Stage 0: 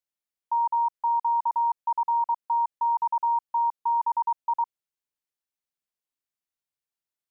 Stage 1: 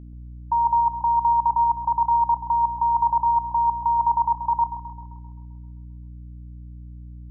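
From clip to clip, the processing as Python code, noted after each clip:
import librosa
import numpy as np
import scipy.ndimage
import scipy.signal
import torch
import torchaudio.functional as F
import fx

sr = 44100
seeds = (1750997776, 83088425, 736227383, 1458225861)

y = fx.level_steps(x, sr, step_db=13)
y = fx.add_hum(y, sr, base_hz=60, snr_db=16)
y = fx.echo_alternate(y, sr, ms=131, hz=940.0, feedback_pct=55, wet_db=-7.0)
y = y * 10.0 ** (6.5 / 20.0)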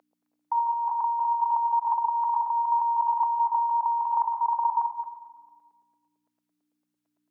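y = fx.reverse_delay_fb(x, sr, ms=112, feedback_pct=44, wet_db=-8.0)
y = fx.over_compress(y, sr, threshold_db=-24.0, ratio=-1.0)
y = scipy.signal.sosfilt(scipy.signal.butter(4, 650.0, 'highpass', fs=sr, output='sos'), y)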